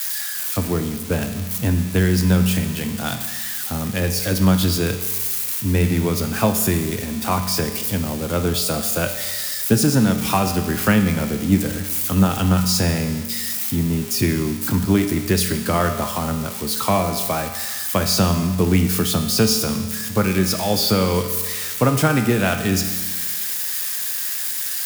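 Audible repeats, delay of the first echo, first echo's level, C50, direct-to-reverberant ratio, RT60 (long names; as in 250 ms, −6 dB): no echo audible, no echo audible, no echo audible, 8.0 dB, 5.5 dB, 1.4 s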